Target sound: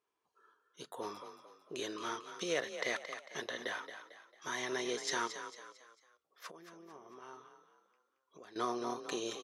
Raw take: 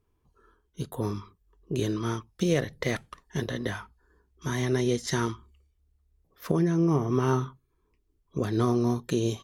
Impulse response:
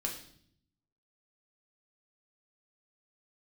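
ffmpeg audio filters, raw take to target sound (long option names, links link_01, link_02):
-filter_complex "[0:a]asettb=1/sr,asplit=3[link_01][link_02][link_03];[link_01]atrim=end=5.274[link_04];[link_02]atrim=start=5.27:end=8.56,asetpts=PTS-STARTPTS,afade=type=in:duration=0.004:curve=qsin,afade=type=out:start_time=3.286:duration=0.004:curve=qsin,acompressor=threshold=-39dB:ratio=8[link_05];[link_03]atrim=start=8.556[link_06];[link_04][link_05]acrossfade=duration=0.004:curve1=hsin:curve2=qsin[link_07];[link_07][link_06]acrossfade=duration=0.004:curve1=qsin:curve2=hsin,highpass=610,lowpass=7900,asplit=5[link_08][link_09][link_10][link_11][link_12];[link_09]adelay=224,afreqshift=35,volume=-10dB[link_13];[link_10]adelay=448,afreqshift=70,volume=-17.7dB[link_14];[link_11]adelay=672,afreqshift=105,volume=-25.5dB[link_15];[link_12]adelay=896,afreqshift=140,volume=-33.2dB[link_16];[link_08][link_13][link_14][link_15][link_16]amix=inputs=5:normalize=0,volume=-3dB"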